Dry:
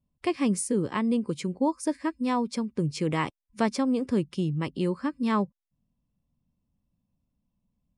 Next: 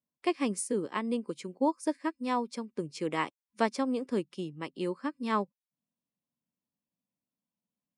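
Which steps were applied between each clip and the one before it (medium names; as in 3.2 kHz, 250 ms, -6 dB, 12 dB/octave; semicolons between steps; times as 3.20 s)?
high-pass 280 Hz 12 dB/octave; upward expansion 1.5:1, over -39 dBFS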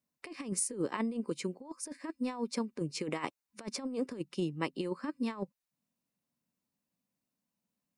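band-stop 3.3 kHz, Q 11; compressor with a negative ratio -34 dBFS, ratio -0.5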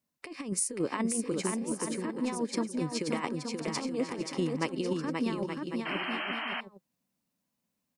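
bouncing-ball echo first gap 530 ms, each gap 0.65×, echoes 5; painted sound noise, 5.85–6.61 s, 580–3200 Hz -38 dBFS; trim +2.5 dB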